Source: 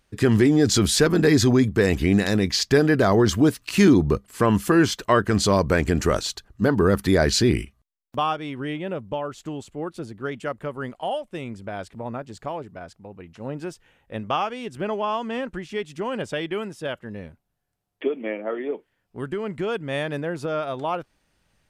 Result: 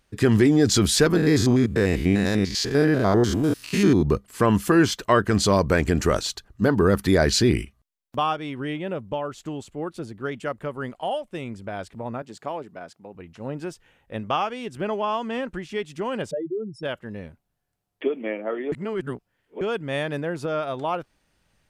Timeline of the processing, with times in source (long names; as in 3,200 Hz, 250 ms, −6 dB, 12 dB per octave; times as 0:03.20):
0:01.17–0:04.06: spectrum averaged block by block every 100 ms
0:12.22–0:13.15: high-pass filter 180 Hz
0:16.31–0:16.83: expanding power law on the bin magnitudes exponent 3.7
0:18.72–0:19.61: reverse